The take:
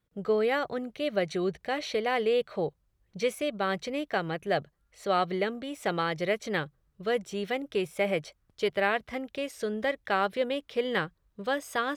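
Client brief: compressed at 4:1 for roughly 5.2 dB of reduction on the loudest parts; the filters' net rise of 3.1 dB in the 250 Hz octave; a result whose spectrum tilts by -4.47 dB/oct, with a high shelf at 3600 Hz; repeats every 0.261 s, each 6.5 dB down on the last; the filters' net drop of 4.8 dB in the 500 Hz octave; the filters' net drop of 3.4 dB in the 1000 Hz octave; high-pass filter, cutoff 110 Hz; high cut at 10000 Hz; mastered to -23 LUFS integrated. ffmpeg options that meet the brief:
-af "highpass=110,lowpass=10k,equalizer=f=250:t=o:g=6.5,equalizer=f=500:t=o:g=-7,equalizer=f=1k:t=o:g=-3,highshelf=f=3.6k:g=4.5,acompressor=threshold=-31dB:ratio=4,aecho=1:1:261|522|783|1044|1305|1566:0.473|0.222|0.105|0.0491|0.0231|0.0109,volume=12dB"

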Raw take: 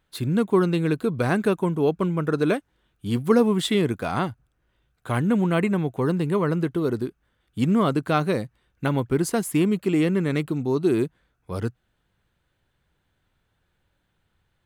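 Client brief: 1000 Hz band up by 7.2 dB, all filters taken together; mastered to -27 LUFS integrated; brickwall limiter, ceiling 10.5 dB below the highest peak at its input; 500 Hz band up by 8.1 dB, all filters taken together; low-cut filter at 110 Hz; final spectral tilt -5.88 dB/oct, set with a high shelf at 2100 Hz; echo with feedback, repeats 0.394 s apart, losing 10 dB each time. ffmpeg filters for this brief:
-af "highpass=110,equalizer=f=500:t=o:g=9,equalizer=f=1k:t=o:g=8.5,highshelf=f=2.1k:g=-9,alimiter=limit=-9.5dB:level=0:latency=1,aecho=1:1:394|788|1182|1576:0.316|0.101|0.0324|0.0104,volume=-6dB"

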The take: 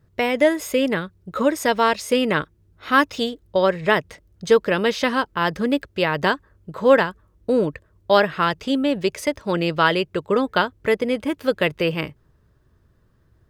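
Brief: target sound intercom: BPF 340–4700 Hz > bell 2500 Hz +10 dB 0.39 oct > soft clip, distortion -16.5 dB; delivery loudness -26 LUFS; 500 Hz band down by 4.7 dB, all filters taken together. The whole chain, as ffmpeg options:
-af "highpass=340,lowpass=4.7k,equalizer=f=500:t=o:g=-4.5,equalizer=f=2.5k:t=o:w=0.39:g=10,asoftclip=threshold=-8dB,volume=-2.5dB"

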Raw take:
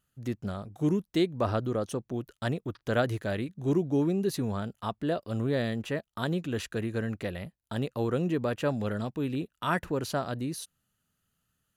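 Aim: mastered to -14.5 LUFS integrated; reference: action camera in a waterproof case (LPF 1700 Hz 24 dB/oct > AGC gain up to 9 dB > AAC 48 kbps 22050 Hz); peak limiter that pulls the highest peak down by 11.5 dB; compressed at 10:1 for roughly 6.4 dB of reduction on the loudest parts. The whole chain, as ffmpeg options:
-af "acompressor=threshold=-28dB:ratio=10,alimiter=level_in=5.5dB:limit=-24dB:level=0:latency=1,volume=-5.5dB,lowpass=f=1.7k:w=0.5412,lowpass=f=1.7k:w=1.3066,dynaudnorm=m=9dB,volume=24.5dB" -ar 22050 -c:a aac -b:a 48k

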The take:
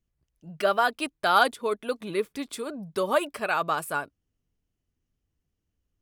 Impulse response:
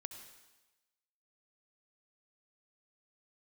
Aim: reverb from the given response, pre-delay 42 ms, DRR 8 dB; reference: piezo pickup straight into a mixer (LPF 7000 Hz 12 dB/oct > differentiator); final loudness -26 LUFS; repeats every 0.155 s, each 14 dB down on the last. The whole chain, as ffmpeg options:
-filter_complex "[0:a]aecho=1:1:155|310:0.2|0.0399,asplit=2[a][b];[1:a]atrim=start_sample=2205,adelay=42[c];[b][c]afir=irnorm=-1:irlink=0,volume=-4.5dB[d];[a][d]amix=inputs=2:normalize=0,lowpass=7k,aderivative,volume=14.5dB"

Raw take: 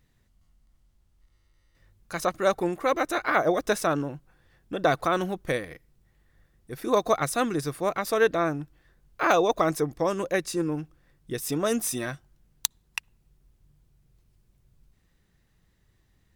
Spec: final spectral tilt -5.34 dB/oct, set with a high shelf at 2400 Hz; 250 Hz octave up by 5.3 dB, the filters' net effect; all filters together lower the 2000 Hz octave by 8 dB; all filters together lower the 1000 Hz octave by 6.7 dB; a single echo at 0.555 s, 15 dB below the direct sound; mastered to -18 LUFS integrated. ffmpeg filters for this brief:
-af "equalizer=f=250:t=o:g=8,equalizer=f=1k:t=o:g=-8,equalizer=f=2k:t=o:g=-5,highshelf=f=2.4k:g=-5.5,aecho=1:1:555:0.178,volume=9dB"

